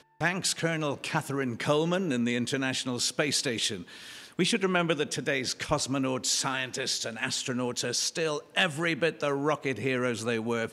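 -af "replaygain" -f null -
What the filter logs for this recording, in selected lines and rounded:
track_gain = +9.0 dB
track_peak = 0.182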